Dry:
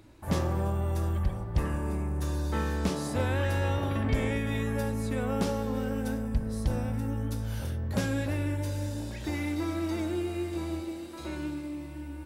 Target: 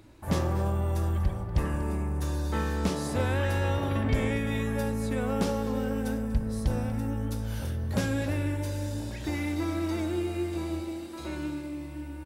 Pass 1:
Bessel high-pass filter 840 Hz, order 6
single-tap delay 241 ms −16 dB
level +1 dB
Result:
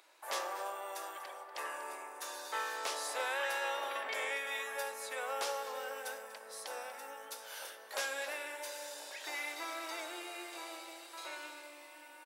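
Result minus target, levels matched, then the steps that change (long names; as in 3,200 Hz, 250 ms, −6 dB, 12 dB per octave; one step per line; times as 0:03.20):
1,000 Hz band +7.0 dB
remove: Bessel high-pass filter 840 Hz, order 6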